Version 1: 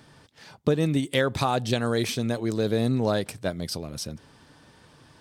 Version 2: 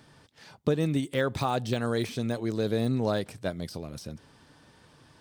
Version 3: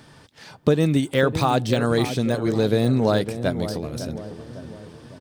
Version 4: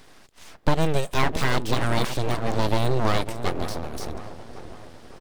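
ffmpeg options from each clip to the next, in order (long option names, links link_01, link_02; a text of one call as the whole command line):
ffmpeg -i in.wav -af "deesser=0.8,volume=-3dB" out.wav
ffmpeg -i in.wav -filter_complex "[0:a]asplit=2[link_01][link_02];[link_02]adelay=554,lowpass=frequency=1100:poles=1,volume=-10dB,asplit=2[link_03][link_04];[link_04]adelay=554,lowpass=frequency=1100:poles=1,volume=0.53,asplit=2[link_05][link_06];[link_06]adelay=554,lowpass=frequency=1100:poles=1,volume=0.53,asplit=2[link_07][link_08];[link_08]adelay=554,lowpass=frequency=1100:poles=1,volume=0.53,asplit=2[link_09][link_10];[link_10]adelay=554,lowpass=frequency=1100:poles=1,volume=0.53,asplit=2[link_11][link_12];[link_12]adelay=554,lowpass=frequency=1100:poles=1,volume=0.53[link_13];[link_01][link_03][link_05][link_07][link_09][link_11][link_13]amix=inputs=7:normalize=0,volume=7.5dB" out.wav
ffmpeg -i in.wav -af "aeval=exprs='abs(val(0))':channel_layout=same" out.wav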